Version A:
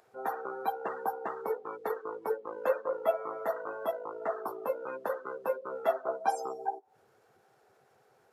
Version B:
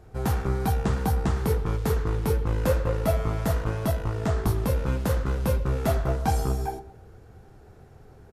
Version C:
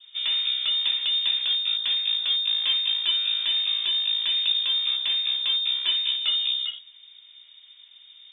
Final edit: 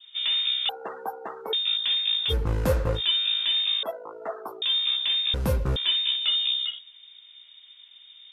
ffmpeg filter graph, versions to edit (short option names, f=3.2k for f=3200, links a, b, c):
-filter_complex "[0:a]asplit=2[a][b];[1:a]asplit=2[c][d];[2:a]asplit=5[e][f][g][h][i];[e]atrim=end=0.692[j];[a]atrim=start=0.688:end=1.532[k];[f]atrim=start=1.528:end=2.34[l];[c]atrim=start=2.28:end=3.01[m];[g]atrim=start=2.95:end=3.832[n];[b]atrim=start=3.828:end=4.622[o];[h]atrim=start=4.618:end=5.342[p];[d]atrim=start=5.338:end=5.762[q];[i]atrim=start=5.758[r];[j][k]acrossfade=d=0.004:c1=hsin:c2=hsin[s];[s][l]acrossfade=d=0.004:c1=hsin:c2=hsin[t];[t][m]acrossfade=d=0.06:c1=tri:c2=tri[u];[u][n]acrossfade=d=0.06:c1=tri:c2=tri[v];[v][o]acrossfade=d=0.004:c1=hsin:c2=hsin[w];[w][p]acrossfade=d=0.004:c1=hsin:c2=hsin[x];[x][q]acrossfade=d=0.004:c1=hsin:c2=hsin[y];[y][r]acrossfade=d=0.004:c1=hsin:c2=hsin"